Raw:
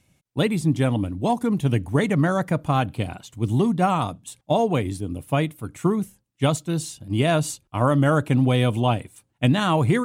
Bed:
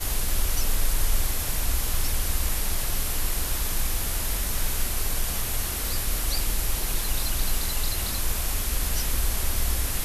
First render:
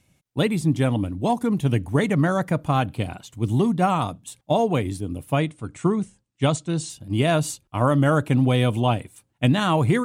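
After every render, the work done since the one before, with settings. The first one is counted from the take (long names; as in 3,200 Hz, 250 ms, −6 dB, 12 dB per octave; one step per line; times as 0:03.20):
0:05.38–0:06.90: Butterworth low-pass 9,500 Hz 72 dB per octave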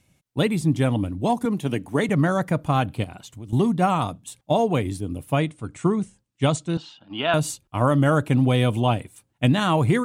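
0:01.45–0:02.09: high-pass filter 190 Hz
0:03.04–0:03.53: downward compressor 5 to 1, threshold −34 dBFS
0:06.77–0:07.34: loudspeaker in its box 360–3,900 Hz, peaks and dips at 370 Hz −8 dB, 520 Hz −5 dB, 870 Hz +6 dB, 1,400 Hz +9 dB, 2,100 Hz −5 dB, 3,000 Hz +6 dB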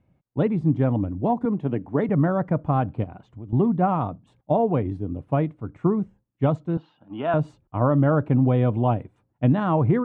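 low-pass filter 1,100 Hz 12 dB per octave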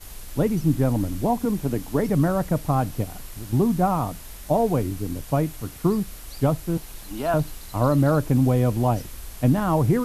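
mix in bed −13 dB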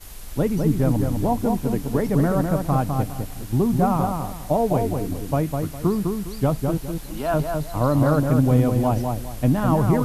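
feedback echo with a low-pass in the loop 204 ms, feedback 29%, level −4 dB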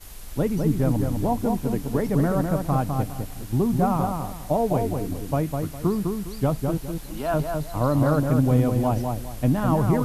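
level −2 dB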